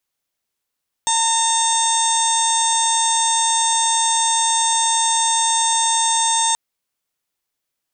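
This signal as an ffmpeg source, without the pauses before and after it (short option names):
-f lavfi -i "aevalsrc='0.112*sin(2*PI*909*t)+0.0251*sin(2*PI*1818*t)+0.015*sin(2*PI*2727*t)+0.075*sin(2*PI*3636*t)+0.0141*sin(2*PI*4545*t)+0.0237*sin(2*PI*5454*t)+0.0708*sin(2*PI*6363*t)+0.0376*sin(2*PI*7272*t)+0.0944*sin(2*PI*8181*t)':d=5.48:s=44100"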